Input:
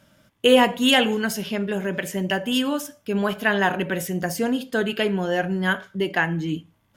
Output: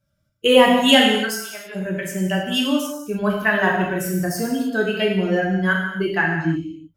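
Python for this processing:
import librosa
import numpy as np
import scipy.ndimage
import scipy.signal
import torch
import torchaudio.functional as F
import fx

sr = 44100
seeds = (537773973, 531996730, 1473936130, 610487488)

y = fx.bin_expand(x, sr, power=1.5)
y = fx.highpass(y, sr, hz=860.0, slope=12, at=(1.17, 1.74), fade=0.02)
y = fx.rev_gated(y, sr, seeds[0], gate_ms=340, shape='falling', drr_db=-2.0)
y = F.gain(torch.from_numpy(y), 1.5).numpy()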